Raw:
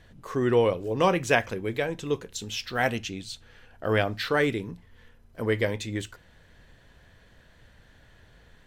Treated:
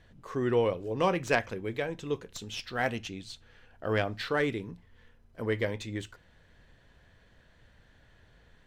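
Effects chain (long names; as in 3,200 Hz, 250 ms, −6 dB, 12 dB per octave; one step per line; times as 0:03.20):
stylus tracing distortion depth 0.044 ms
high-shelf EQ 10,000 Hz −9.5 dB
level −4.5 dB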